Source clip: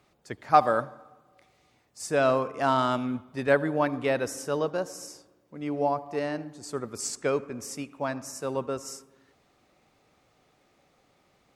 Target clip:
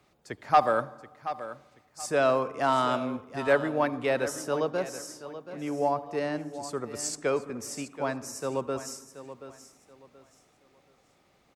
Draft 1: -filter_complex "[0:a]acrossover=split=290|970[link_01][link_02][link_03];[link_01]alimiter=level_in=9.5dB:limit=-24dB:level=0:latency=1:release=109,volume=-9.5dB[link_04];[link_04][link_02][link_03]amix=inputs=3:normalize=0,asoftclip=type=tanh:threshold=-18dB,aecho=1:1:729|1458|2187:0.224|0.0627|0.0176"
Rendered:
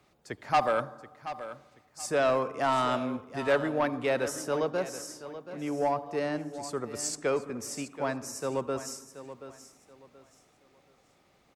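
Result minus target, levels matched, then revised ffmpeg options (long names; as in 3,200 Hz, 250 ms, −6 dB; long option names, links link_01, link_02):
soft clipping: distortion +10 dB
-filter_complex "[0:a]acrossover=split=290|970[link_01][link_02][link_03];[link_01]alimiter=level_in=9.5dB:limit=-24dB:level=0:latency=1:release=109,volume=-9.5dB[link_04];[link_04][link_02][link_03]amix=inputs=3:normalize=0,asoftclip=type=tanh:threshold=-9dB,aecho=1:1:729|1458|2187:0.224|0.0627|0.0176"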